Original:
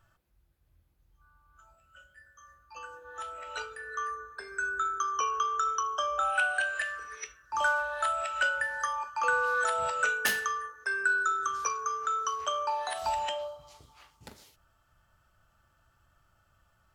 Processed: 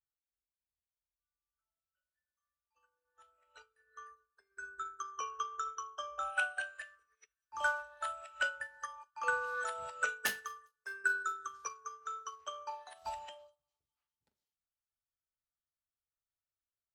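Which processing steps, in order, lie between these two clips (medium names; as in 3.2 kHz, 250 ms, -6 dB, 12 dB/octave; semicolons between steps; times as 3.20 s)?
feedback echo behind a high-pass 203 ms, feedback 72%, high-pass 4.5 kHz, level -17 dB; upward expansion 2.5:1, over -47 dBFS; trim -3 dB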